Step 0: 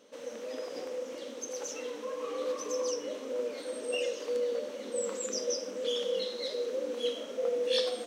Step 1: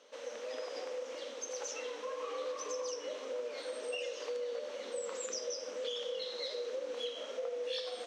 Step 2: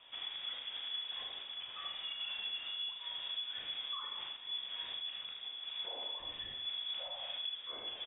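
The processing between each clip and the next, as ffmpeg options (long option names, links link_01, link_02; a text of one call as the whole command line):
ffmpeg -i in.wav -filter_complex "[0:a]acrossover=split=450 7600:gain=0.141 1 0.141[link_01][link_02][link_03];[link_01][link_02][link_03]amix=inputs=3:normalize=0,acompressor=threshold=-37dB:ratio=6,volume=1.5dB" out.wav
ffmpeg -i in.wav -filter_complex "[0:a]alimiter=level_in=13.5dB:limit=-24dB:level=0:latency=1:release=436,volume=-13.5dB,asplit=2[link_01][link_02];[link_02]aecho=0:1:38|77:0.473|0.562[link_03];[link_01][link_03]amix=inputs=2:normalize=0,lowpass=frequency=3300:width_type=q:width=0.5098,lowpass=frequency=3300:width_type=q:width=0.6013,lowpass=frequency=3300:width_type=q:width=0.9,lowpass=frequency=3300:width_type=q:width=2.563,afreqshift=-3900,volume=2.5dB" out.wav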